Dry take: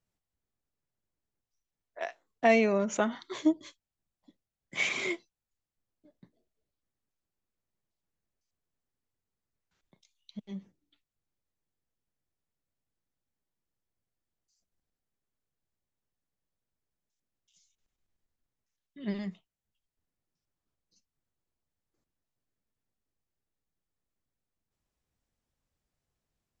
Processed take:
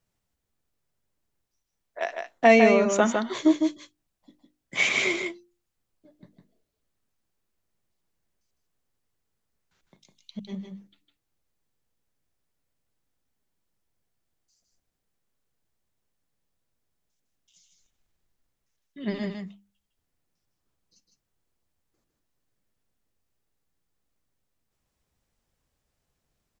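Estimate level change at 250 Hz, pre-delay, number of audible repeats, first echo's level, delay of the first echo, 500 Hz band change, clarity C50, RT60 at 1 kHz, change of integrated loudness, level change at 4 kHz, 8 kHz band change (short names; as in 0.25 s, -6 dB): +7.0 dB, none, 1, -5.0 dB, 0.156 s, +7.5 dB, none, none, +7.0 dB, +8.0 dB, n/a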